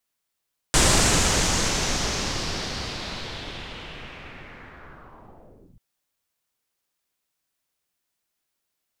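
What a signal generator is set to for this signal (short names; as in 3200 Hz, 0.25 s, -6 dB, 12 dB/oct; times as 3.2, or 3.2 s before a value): swept filtered noise pink, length 5.04 s lowpass, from 8000 Hz, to 120 Hz, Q 2.3, linear, gain ramp -33.5 dB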